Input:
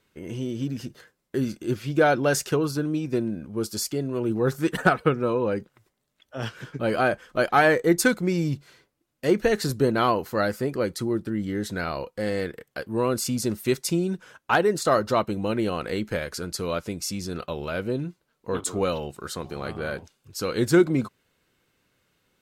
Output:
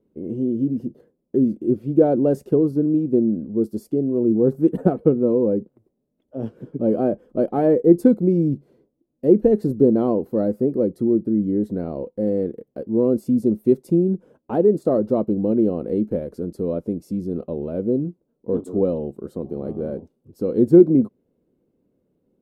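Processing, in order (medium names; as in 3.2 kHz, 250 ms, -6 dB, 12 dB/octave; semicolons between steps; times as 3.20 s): FFT filter 120 Hz 0 dB, 230 Hz +11 dB, 510 Hz +6 dB, 1.5 kHz -21 dB, 6.6 kHz -25 dB, 11 kHz -16 dB; trim -1 dB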